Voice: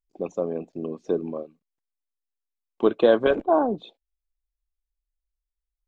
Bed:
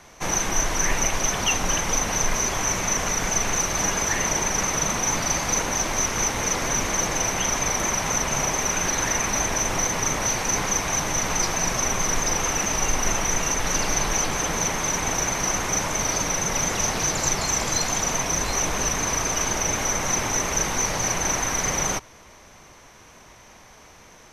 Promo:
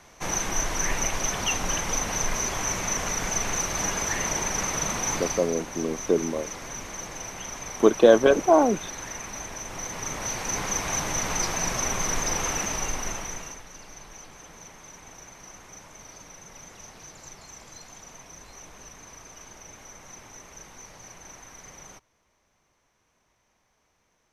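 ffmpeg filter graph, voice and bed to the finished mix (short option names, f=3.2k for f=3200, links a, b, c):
-filter_complex "[0:a]adelay=5000,volume=2.5dB[a];[1:a]volume=5.5dB,afade=t=out:st=5.13:d=0.39:silence=0.354813,afade=t=in:st=9.67:d=1.24:silence=0.334965,afade=t=out:st=12.5:d=1.16:silence=0.11885[b];[a][b]amix=inputs=2:normalize=0"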